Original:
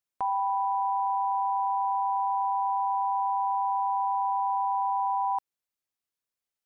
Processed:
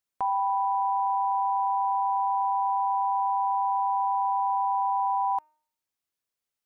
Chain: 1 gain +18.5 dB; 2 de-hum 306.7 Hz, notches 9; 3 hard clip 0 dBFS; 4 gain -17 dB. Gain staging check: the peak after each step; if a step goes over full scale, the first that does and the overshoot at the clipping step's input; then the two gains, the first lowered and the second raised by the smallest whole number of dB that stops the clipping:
-2.5, -2.5, -2.5, -19.5 dBFS; no overload

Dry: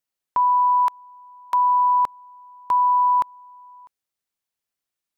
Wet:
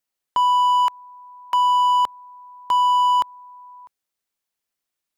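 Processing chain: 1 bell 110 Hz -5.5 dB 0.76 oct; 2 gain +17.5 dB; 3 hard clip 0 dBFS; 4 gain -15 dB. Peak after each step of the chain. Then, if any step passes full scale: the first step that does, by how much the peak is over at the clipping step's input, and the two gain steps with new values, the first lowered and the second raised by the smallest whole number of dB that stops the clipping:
-14.0, +3.5, 0.0, -15.0 dBFS; step 2, 3.5 dB; step 2 +13.5 dB, step 4 -11 dB

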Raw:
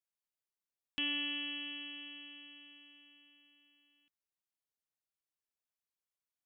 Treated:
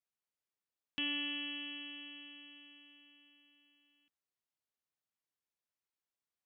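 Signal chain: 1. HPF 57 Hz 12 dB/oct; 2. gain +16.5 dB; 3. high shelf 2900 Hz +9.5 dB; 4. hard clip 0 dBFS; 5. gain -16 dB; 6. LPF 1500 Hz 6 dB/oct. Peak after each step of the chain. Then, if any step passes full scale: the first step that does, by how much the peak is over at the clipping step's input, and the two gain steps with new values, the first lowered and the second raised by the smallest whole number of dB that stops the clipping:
-24.5, -8.0, -3.5, -3.5, -19.5, -25.5 dBFS; no overload

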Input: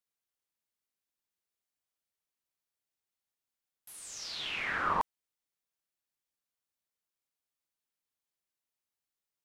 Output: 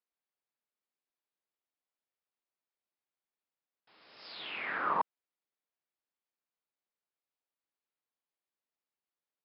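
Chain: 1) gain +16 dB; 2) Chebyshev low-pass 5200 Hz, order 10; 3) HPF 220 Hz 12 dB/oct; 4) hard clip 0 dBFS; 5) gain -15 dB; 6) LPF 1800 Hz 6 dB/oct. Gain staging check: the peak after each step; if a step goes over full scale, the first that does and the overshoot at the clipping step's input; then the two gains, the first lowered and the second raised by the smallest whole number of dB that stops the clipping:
-2.0, -2.5, -2.0, -2.0, -17.0, -18.0 dBFS; no overload

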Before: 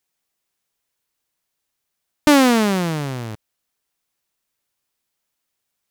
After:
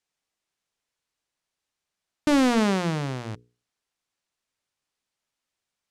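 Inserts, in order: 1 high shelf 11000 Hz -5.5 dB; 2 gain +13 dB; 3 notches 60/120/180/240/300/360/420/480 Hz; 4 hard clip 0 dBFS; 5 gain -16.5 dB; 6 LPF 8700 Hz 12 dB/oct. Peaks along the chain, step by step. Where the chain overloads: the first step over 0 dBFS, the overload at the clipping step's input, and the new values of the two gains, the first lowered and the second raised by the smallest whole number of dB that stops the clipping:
-5.5, +7.5, +8.5, 0.0, -16.5, -15.5 dBFS; step 2, 8.5 dB; step 2 +4 dB, step 5 -7.5 dB

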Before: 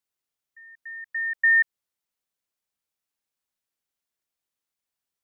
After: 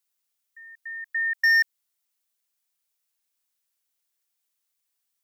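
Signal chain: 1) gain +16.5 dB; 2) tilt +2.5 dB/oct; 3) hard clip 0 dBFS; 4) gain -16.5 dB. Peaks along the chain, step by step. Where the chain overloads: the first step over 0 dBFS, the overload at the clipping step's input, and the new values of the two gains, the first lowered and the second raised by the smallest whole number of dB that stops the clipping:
+2.5, +4.5, 0.0, -16.5 dBFS; step 1, 4.5 dB; step 1 +11.5 dB, step 4 -11.5 dB

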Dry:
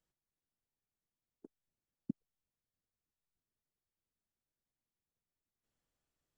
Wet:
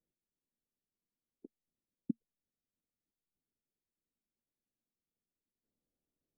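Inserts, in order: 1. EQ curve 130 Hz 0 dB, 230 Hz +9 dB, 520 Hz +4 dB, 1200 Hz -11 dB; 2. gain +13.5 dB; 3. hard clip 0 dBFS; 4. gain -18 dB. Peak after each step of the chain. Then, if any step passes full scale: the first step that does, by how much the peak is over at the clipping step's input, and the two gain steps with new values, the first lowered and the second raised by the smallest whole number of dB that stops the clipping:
-17.0, -3.5, -3.5, -21.5 dBFS; no overload

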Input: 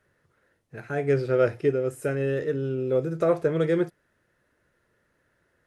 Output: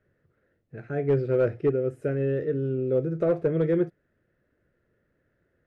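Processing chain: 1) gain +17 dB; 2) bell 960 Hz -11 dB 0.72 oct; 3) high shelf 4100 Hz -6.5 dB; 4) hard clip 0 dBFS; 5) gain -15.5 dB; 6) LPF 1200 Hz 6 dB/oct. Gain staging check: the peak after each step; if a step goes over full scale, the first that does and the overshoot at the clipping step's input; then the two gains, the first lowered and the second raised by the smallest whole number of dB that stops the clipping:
+6.0, +5.0, +4.5, 0.0, -15.5, -15.5 dBFS; step 1, 4.5 dB; step 1 +12 dB, step 5 -10.5 dB

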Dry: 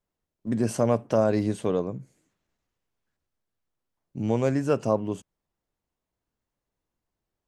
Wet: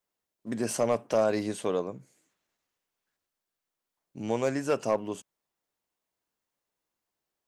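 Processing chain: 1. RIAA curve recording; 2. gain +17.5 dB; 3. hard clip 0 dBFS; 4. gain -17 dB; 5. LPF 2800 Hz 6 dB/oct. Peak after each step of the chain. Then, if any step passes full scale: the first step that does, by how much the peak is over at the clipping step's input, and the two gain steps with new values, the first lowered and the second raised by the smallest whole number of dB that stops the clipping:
-12.0, +5.5, 0.0, -17.0, -17.0 dBFS; step 2, 5.5 dB; step 2 +11.5 dB, step 4 -11 dB

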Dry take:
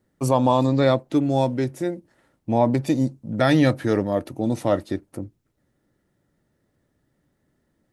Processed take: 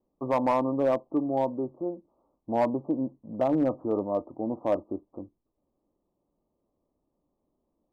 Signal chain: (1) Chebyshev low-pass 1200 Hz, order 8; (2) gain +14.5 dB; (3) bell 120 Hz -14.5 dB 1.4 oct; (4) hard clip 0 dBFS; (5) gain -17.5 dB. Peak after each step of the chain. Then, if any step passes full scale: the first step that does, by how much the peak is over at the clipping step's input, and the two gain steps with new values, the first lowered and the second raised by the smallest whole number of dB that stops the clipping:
-7.0, +7.5, +6.0, 0.0, -17.5 dBFS; step 2, 6.0 dB; step 2 +8.5 dB, step 5 -11.5 dB

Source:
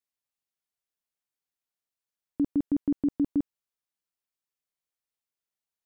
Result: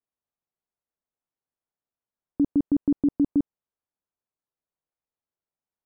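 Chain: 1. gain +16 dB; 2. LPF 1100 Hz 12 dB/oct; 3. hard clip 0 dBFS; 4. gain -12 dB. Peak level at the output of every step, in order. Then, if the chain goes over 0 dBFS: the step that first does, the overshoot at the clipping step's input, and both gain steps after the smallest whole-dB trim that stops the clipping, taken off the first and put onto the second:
-3.5, -3.5, -3.5, -15.5 dBFS; no overload

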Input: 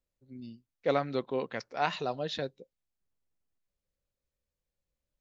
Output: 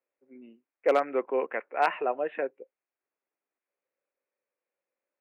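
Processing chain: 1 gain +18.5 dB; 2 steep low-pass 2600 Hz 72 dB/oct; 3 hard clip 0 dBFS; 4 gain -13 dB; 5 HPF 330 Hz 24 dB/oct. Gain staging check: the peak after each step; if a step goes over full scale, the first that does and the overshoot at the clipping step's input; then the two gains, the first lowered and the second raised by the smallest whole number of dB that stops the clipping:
+5.5, +4.5, 0.0, -13.0, -9.5 dBFS; step 1, 4.5 dB; step 1 +13.5 dB, step 4 -8 dB

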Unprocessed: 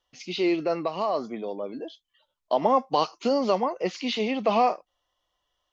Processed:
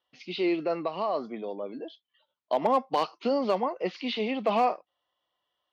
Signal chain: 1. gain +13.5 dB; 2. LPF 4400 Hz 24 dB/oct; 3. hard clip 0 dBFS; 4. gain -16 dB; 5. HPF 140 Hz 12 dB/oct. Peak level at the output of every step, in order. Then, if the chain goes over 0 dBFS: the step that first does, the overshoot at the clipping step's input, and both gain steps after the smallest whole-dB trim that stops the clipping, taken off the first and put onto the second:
+4.5, +4.5, 0.0, -16.0, -13.5 dBFS; step 1, 4.5 dB; step 1 +8.5 dB, step 4 -11 dB

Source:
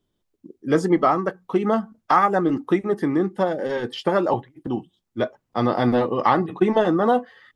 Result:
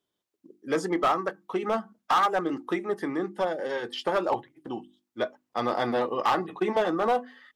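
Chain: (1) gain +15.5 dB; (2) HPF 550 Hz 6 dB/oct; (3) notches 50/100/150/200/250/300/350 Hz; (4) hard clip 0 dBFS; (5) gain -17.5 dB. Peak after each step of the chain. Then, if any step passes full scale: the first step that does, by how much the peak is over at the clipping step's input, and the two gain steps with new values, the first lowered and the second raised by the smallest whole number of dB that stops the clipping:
+11.0, +10.0, +10.0, 0.0, -17.5 dBFS; step 1, 10.0 dB; step 1 +5.5 dB, step 5 -7.5 dB

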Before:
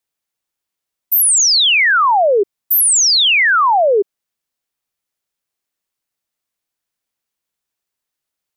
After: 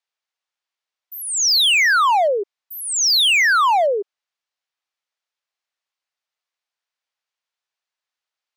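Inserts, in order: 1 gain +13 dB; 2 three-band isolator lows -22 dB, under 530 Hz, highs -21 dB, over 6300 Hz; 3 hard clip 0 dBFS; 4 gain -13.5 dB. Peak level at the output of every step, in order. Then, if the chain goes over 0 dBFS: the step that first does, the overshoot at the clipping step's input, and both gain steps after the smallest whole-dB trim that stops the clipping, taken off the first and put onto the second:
+4.0, +4.0, 0.0, -13.5 dBFS; step 1, 4.0 dB; step 1 +9 dB, step 4 -9.5 dB

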